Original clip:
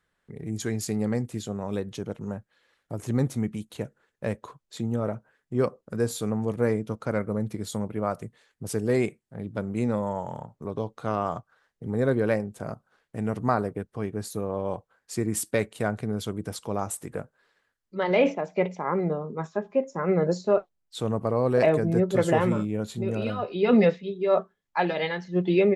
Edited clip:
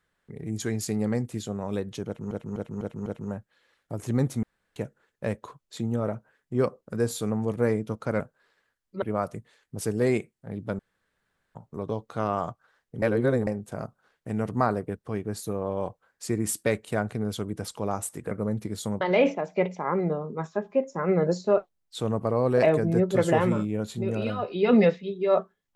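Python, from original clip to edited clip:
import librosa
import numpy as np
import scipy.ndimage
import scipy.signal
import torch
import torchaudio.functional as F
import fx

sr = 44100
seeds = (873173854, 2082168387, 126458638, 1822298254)

y = fx.edit(x, sr, fx.repeat(start_s=2.06, length_s=0.25, count=5),
    fx.room_tone_fill(start_s=3.43, length_s=0.33),
    fx.swap(start_s=7.2, length_s=0.7, other_s=17.19, other_length_s=0.82),
    fx.room_tone_fill(start_s=9.67, length_s=0.76),
    fx.reverse_span(start_s=11.9, length_s=0.45), tone=tone)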